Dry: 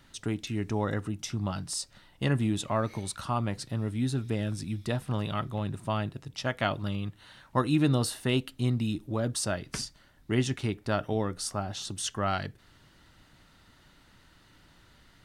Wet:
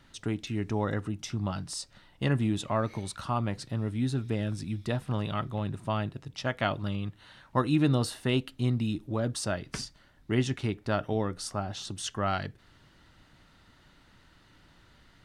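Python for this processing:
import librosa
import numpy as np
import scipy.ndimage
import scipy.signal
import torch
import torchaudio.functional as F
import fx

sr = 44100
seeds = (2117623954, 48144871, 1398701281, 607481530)

y = fx.high_shelf(x, sr, hz=7900.0, db=-8.5)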